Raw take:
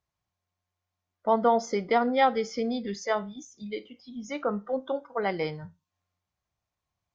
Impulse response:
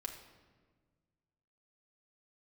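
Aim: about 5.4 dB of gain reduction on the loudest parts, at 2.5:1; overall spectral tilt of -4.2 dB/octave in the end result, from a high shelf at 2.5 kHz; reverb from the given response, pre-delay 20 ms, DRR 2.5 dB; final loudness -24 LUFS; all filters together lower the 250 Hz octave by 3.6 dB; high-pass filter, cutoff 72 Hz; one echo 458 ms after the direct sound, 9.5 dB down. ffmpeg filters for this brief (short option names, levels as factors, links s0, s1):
-filter_complex "[0:a]highpass=72,equalizer=f=250:t=o:g=-4,highshelf=f=2500:g=3,acompressor=threshold=0.0562:ratio=2.5,aecho=1:1:458:0.335,asplit=2[s0][s1];[1:a]atrim=start_sample=2205,adelay=20[s2];[s1][s2]afir=irnorm=-1:irlink=0,volume=0.944[s3];[s0][s3]amix=inputs=2:normalize=0,volume=1.88"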